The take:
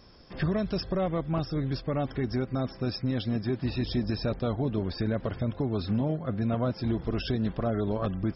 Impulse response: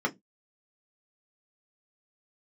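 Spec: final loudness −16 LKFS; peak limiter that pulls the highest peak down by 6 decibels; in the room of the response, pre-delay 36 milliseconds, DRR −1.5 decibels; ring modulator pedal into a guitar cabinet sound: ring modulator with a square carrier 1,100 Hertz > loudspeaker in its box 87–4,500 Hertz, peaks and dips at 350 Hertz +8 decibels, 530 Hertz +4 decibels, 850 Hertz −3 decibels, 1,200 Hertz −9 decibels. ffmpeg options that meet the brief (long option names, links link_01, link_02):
-filter_complex "[0:a]alimiter=limit=-22.5dB:level=0:latency=1,asplit=2[link_01][link_02];[1:a]atrim=start_sample=2205,adelay=36[link_03];[link_02][link_03]afir=irnorm=-1:irlink=0,volume=-8dB[link_04];[link_01][link_04]amix=inputs=2:normalize=0,aeval=exprs='val(0)*sgn(sin(2*PI*1100*n/s))':channel_layout=same,highpass=87,equalizer=frequency=350:width_type=q:width=4:gain=8,equalizer=frequency=530:width_type=q:width=4:gain=4,equalizer=frequency=850:width_type=q:width=4:gain=-3,equalizer=frequency=1200:width_type=q:width=4:gain=-9,lowpass=frequency=4500:width=0.5412,lowpass=frequency=4500:width=1.3066,volume=13dB"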